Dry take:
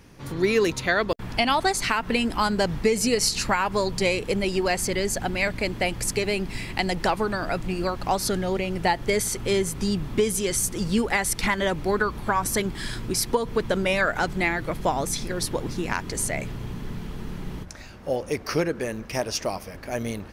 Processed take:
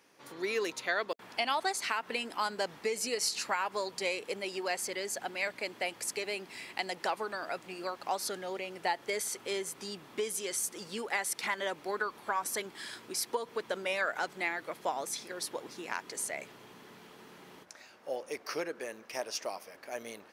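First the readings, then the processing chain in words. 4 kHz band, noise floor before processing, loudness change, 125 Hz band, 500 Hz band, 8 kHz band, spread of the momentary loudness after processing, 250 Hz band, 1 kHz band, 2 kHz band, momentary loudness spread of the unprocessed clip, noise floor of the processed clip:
−8.5 dB, −40 dBFS, −10.0 dB, −26.0 dB, −11.0 dB, −8.5 dB, 10 LU, −18.0 dB, −9.0 dB, −8.5 dB, 9 LU, −56 dBFS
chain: high-pass filter 440 Hz 12 dB per octave
level −8.5 dB

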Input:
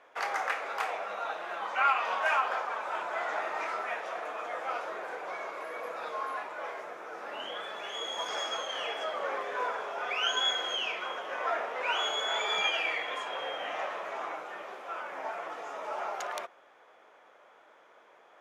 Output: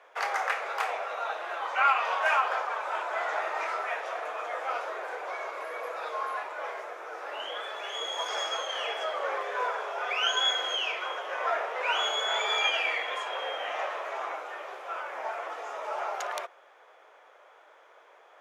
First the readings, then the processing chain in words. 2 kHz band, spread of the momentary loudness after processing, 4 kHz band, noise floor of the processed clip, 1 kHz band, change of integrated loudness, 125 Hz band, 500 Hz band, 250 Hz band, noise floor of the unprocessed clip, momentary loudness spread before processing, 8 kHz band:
+2.5 dB, 11 LU, +2.5 dB, −57 dBFS, +2.5 dB, +2.5 dB, can't be measured, +2.0 dB, −3.5 dB, −59 dBFS, 11 LU, +2.5 dB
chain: high-pass filter 380 Hz 24 dB per octave
level +2.5 dB

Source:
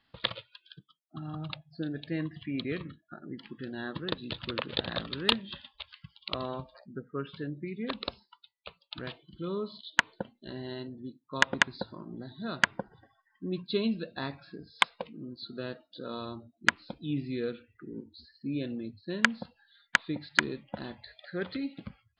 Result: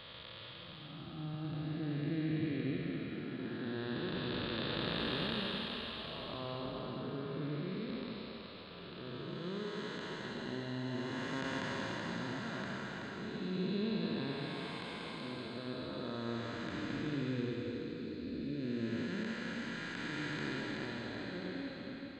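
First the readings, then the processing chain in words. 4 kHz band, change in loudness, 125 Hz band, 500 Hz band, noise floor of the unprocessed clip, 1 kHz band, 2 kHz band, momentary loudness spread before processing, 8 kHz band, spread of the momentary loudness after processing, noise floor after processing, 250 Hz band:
−7.5 dB, −6.0 dB, 0.0 dB, −3.5 dB, −76 dBFS, −7.5 dB, −11.0 dB, 17 LU, −14.0 dB, 8 LU, −50 dBFS, −1.5 dB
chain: spectrum smeared in time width 792 ms
echo with a time of its own for lows and highs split 440 Hz, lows 102 ms, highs 378 ms, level −4.5 dB
level +2 dB

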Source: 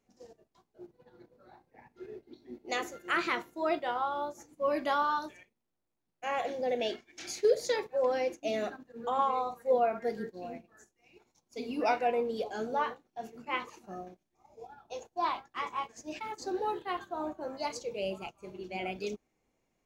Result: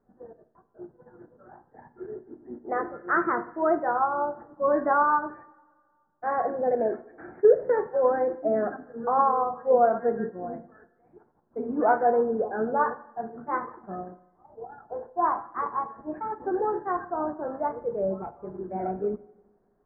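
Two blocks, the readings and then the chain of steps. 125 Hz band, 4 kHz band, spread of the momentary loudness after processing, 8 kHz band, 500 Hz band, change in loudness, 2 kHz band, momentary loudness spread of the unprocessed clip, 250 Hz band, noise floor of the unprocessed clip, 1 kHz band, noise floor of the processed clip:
can't be measured, below −40 dB, 17 LU, below −30 dB, +7.0 dB, +7.0 dB, +3.5 dB, 17 LU, +7.0 dB, −81 dBFS, +7.0 dB, −68 dBFS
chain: Butterworth low-pass 1,700 Hz 72 dB per octave
coupled-rooms reverb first 0.59 s, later 1.9 s, from −18 dB, DRR 11 dB
level +7 dB

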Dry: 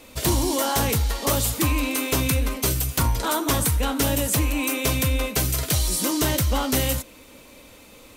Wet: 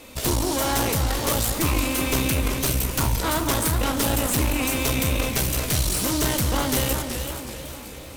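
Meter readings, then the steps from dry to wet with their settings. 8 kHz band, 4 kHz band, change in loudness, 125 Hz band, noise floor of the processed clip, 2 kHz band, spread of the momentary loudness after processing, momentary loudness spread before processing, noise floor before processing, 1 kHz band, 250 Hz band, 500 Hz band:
0.0 dB, +0.5 dB, −0.5 dB, −0.5 dB, −38 dBFS, +1.0 dB, 5 LU, 2 LU, −48 dBFS, +0.5 dB, 0.0 dB, 0.0 dB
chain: asymmetric clip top −35.5 dBFS
delay that swaps between a low-pass and a high-pass 241 ms, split 2,300 Hz, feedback 76%, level −12 dB
feedback echo with a swinging delay time 379 ms, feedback 43%, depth 129 cents, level −8 dB
level +2.5 dB

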